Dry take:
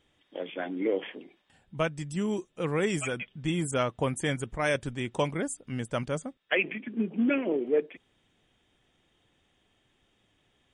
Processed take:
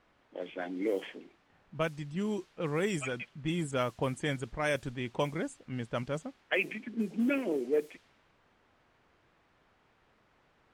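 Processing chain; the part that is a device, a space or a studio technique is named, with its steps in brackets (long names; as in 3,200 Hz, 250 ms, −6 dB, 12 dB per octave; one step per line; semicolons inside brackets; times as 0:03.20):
cassette deck with a dynamic noise filter (white noise bed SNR 23 dB; low-pass that shuts in the quiet parts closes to 1,500 Hz, open at −22.5 dBFS)
level −3.5 dB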